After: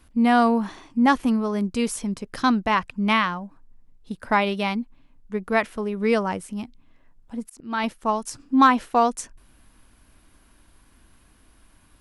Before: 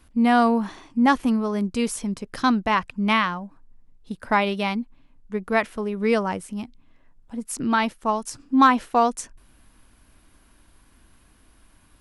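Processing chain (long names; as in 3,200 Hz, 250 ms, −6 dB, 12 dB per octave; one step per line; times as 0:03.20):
0:07.42–0:07.84: volume swells 306 ms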